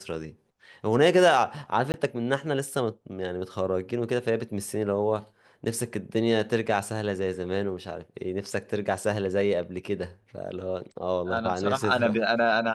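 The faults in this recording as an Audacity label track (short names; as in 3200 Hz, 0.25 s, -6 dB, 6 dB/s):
1.920000	1.940000	gap 19 ms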